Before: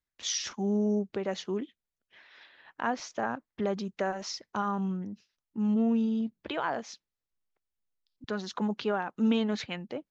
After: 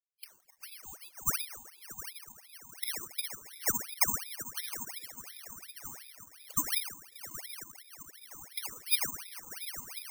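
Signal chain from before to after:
loose part that buzzes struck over −43 dBFS, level −35 dBFS
Butterworth high-pass 380 Hz 48 dB per octave
transient designer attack +5 dB, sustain −8 dB
spectral peaks only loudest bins 2
envelope filter 640–4,300 Hz, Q 21, down, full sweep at −36.5 dBFS
on a send: feedback delay with all-pass diffusion 736 ms, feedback 52%, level −10 dB
on the sum: rectangular room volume 1,900 cubic metres, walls furnished, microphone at 2.7 metres
bad sample-rate conversion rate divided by 6×, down none, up zero stuff
ring modulator whose carrier an LFO sweeps 1,700 Hz, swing 80%, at 2.8 Hz
level +6.5 dB

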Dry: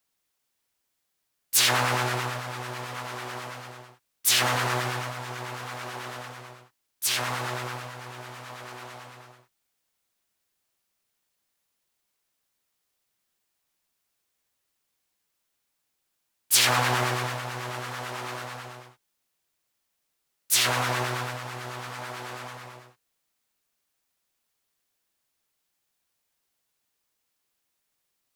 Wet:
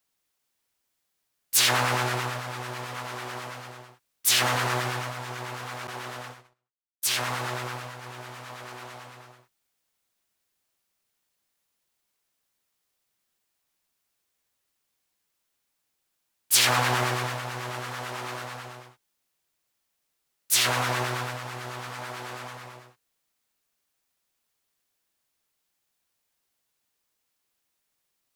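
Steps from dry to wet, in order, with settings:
0:05.87–0:08.03: noise gate −40 dBFS, range −32 dB

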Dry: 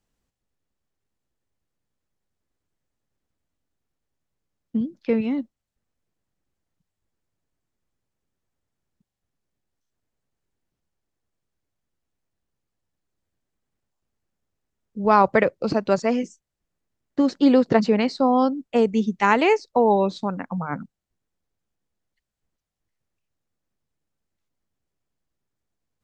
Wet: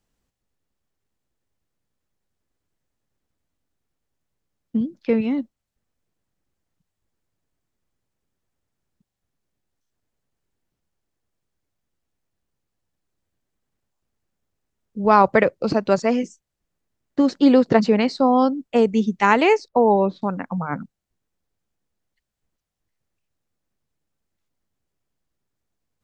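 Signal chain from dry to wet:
0:19.68–0:20.22: Bessel low-pass filter 1,700 Hz, order 2
level +2 dB

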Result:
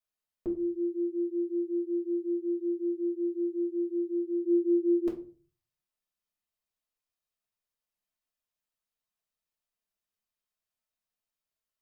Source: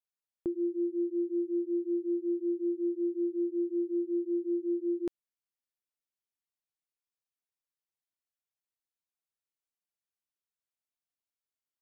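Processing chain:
0:04.44–0:05.07: parametric band 320 Hz +6 dB 0.91 octaves
convolution reverb RT60 0.40 s, pre-delay 3 ms, DRR −3.5 dB
level −3 dB

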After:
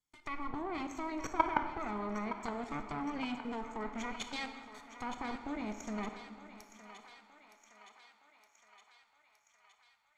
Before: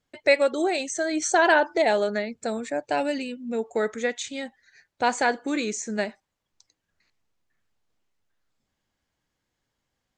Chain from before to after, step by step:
lower of the sound and its delayed copy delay 0.9 ms
treble cut that deepens with the level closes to 1,300 Hz, closed at −24 dBFS
drawn EQ curve 150 Hz 0 dB, 4,500 Hz +5 dB, 6,500 Hz +10 dB
output level in coarse steps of 18 dB
feedback echo with a high-pass in the loop 916 ms, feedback 70%, high-pass 650 Hz, level −11 dB
convolution reverb RT60 1.8 s, pre-delay 16 ms, DRR 7.5 dB
level −3 dB

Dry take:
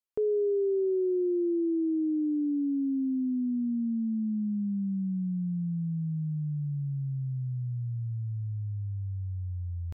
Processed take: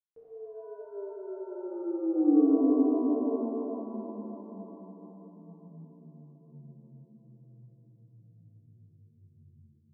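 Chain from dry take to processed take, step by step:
source passing by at 0:02.30, 23 m/s, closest 2.1 metres
reverb with rising layers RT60 3.7 s, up +7 semitones, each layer −8 dB, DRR −10.5 dB

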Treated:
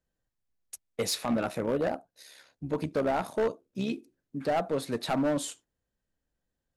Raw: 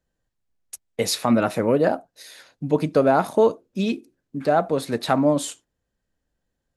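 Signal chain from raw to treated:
0:01.25–0:03.92: amplitude modulation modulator 68 Hz, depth 35%
hard clipping −16.5 dBFS, distortion −11 dB
level −6 dB

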